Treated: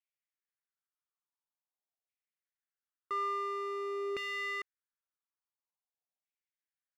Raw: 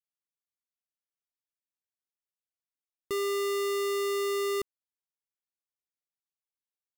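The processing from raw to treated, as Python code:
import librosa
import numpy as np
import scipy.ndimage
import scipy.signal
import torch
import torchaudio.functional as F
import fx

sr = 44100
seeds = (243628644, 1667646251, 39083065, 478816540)

y = fx.filter_lfo_bandpass(x, sr, shape='saw_down', hz=0.48, low_hz=640.0, high_hz=2400.0, q=3.4)
y = fx.dmg_tone(y, sr, hz=2400.0, level_db=-71.0, at=(3.15, 4.09), fade=0.02)
y = F.gain(torch.from_numpy(y), 6.0).numpy()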